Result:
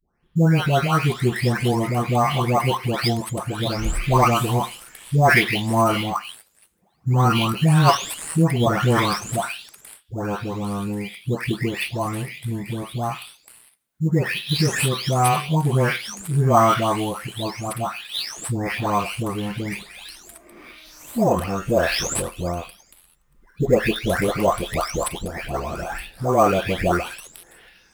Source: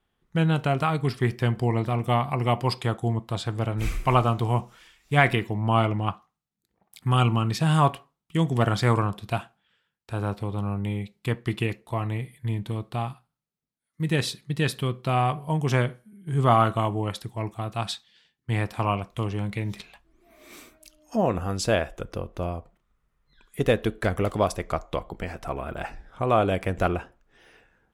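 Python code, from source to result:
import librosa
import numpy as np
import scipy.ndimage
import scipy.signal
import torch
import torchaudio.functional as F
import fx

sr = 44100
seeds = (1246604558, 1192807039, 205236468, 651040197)

p1 = fx.spec_delay(x, sr, highs='late', ms=557)
p2 = fx.high_shelf(p1, sr, hz=3200.0, db=11.5)
p3 = fx.sample_hold(p2, sr, seeds[0], rate_hz=7100.0, jitter_pct=0)
p4 = p2 + F.gain(torch.from_numpy(p3), -6.5).numpy()
y = F.gain(torch.from_numpy(p4), 2.5).numpy()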